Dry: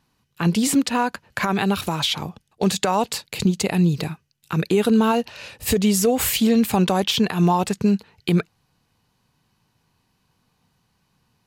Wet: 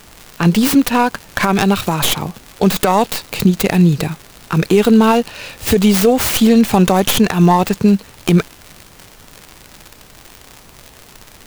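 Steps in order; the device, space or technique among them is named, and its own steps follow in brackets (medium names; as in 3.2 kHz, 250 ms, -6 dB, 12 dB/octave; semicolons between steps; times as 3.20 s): record under a worn stylus (tracing distortion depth 0.29 ms; crackle 130 per s -29 dBFS; pink noise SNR 28 dB); trim +7 dB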